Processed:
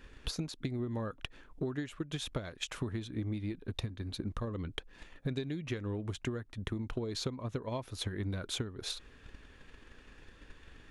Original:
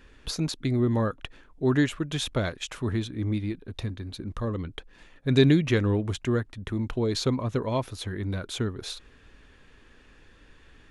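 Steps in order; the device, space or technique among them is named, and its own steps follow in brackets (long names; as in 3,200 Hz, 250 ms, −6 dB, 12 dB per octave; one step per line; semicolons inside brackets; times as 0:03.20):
drum-bus smash (transient designer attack +8 dB, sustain 0 dB; downward compressor 20 to 1, threshold −30 dBFS, peak gain reduction 22 dB; soft clipping −19.5 dBFS, distortion −26 dB)
level −2 dB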